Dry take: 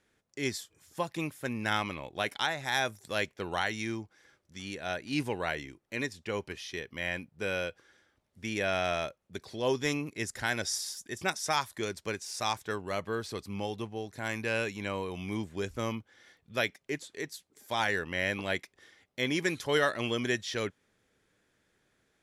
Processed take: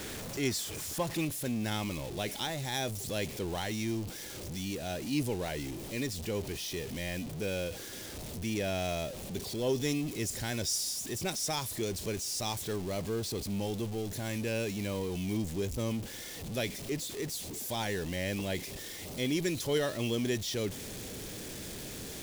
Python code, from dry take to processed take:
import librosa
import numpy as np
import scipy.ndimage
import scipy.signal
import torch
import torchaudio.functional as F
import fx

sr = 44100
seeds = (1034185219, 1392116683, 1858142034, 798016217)

y = x + 0.5 * 10.0 ** (-33.0 / 20.0) * np.sign(x)
y = fx.peak_eq(y, sr, hz=1400.0, db=fx.steps((0.0, -6.0), (1.25, -13.5)), octaves=1.8)